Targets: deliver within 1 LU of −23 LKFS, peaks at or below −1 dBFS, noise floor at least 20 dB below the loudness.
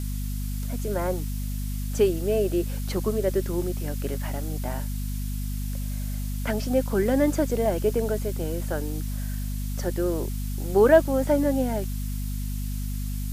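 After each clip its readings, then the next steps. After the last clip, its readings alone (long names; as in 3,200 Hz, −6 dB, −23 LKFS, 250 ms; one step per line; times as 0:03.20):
mains hum 50 Hz; hum harmonics up to 250 Hz; level of the hum −27 dBFS; background noise floor −29 dBFS; target noise floor −47 dBFS; integrated loudness −26.5 LKFS; sample peak −5.0 dBFS; target loudness −23.0 LKFS
→ hum removal 50 Hz, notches 5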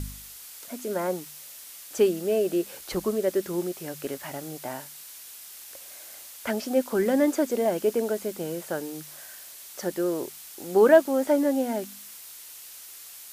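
mains hum none found; background noise floor −45 dBFS; target noise floor −47 dBFS
→ noise reduction from a noise print 6 dB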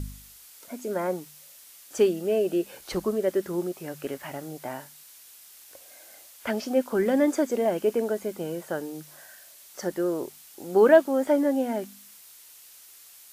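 background noise floor −51 dBFS; integrated loudness −26.0 LKFS; sample peak −6.0 dBFS; target loudness −23.0 LKFS
→ level +3 dB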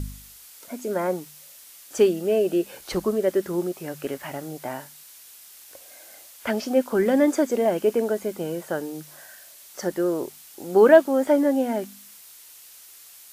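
integrated loudness −23.0 LKFS; sample peak −3.0 dBFS; background noise floor −48 dBFS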